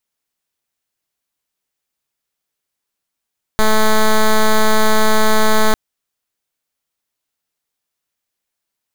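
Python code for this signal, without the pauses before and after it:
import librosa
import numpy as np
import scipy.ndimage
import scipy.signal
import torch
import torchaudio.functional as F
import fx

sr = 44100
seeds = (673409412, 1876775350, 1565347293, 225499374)

y = fx.pulse(sr, length_s=2.15, hz=217.0, level_db=-10.5, duty_pct=8)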